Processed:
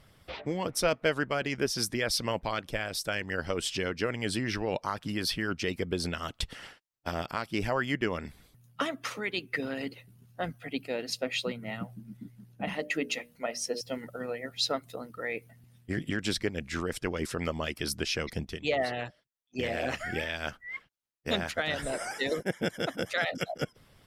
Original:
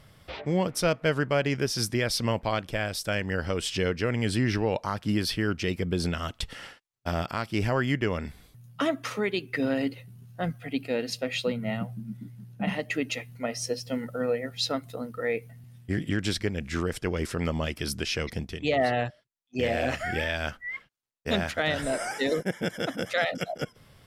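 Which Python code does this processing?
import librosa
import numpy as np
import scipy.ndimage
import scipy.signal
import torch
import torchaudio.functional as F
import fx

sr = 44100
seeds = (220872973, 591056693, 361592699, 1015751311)

y = fx.hpss(x, sr, part='harmonic', gain_db=-10)
y = fx.hum_notches(y, sr, base_hz=60, count=10, at=(12.66, 13.81))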